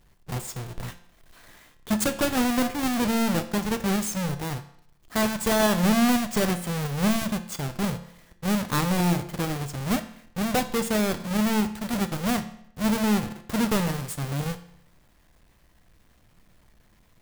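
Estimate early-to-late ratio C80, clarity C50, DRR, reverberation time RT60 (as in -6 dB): 15.5 dB, 12.5 dB, 8.5 dB, 0.70 s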